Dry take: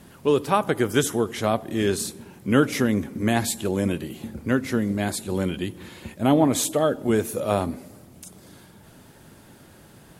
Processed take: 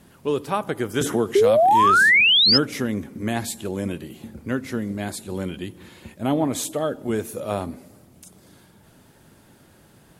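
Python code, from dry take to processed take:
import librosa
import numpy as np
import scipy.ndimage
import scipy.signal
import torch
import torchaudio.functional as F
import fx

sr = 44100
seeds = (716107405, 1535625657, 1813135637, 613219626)

y = fx.spec_paint(x, sr, seeds[0], shape='rise', start_s=1.35, length_s=1.23, low_hz=380.0, high_hz=5300.0, level_db=-12.0)
y = fx.band_squash(y, sr, depth_pct=70, at=(1.01, 2.21))
y = y * 10.0 ** (-3.5 / 20.0)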